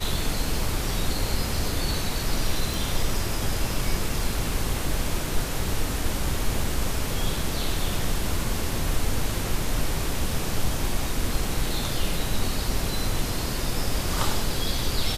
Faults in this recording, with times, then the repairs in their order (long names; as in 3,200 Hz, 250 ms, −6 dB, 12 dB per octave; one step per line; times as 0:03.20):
0:02.74: click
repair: click removal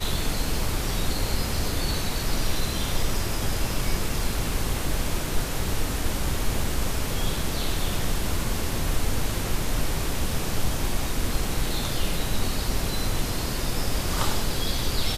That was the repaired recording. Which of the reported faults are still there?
none of them is left